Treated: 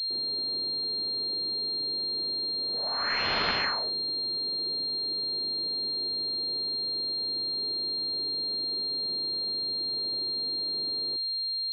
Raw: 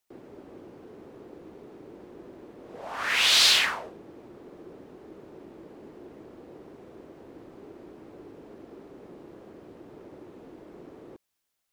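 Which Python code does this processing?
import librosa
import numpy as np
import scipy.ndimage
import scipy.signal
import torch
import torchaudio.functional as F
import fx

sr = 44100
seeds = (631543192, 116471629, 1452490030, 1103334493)

y = fx.pwm(x, sr, carrier_hz=4200.0)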